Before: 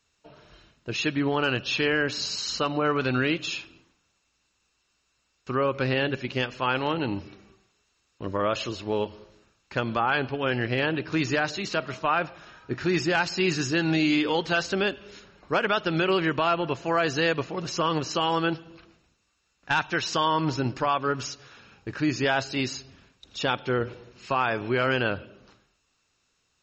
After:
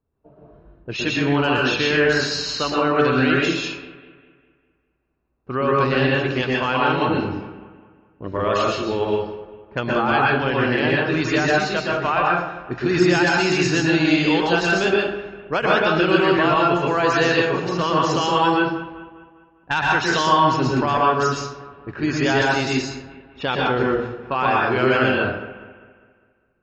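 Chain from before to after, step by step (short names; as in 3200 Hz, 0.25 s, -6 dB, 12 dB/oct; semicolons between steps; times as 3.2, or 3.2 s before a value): low-pass opened by the level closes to 530 Hz, open at -24.5 dBFS; on a send: analogue delay 0.201 s, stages 4096, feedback 48%, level -16.5 dB; on the sum: plate-style reverb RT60 0.66 s, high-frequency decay 0.55×, pre-delay 0.105 s, DRR -3.5 dB; gain +2 dB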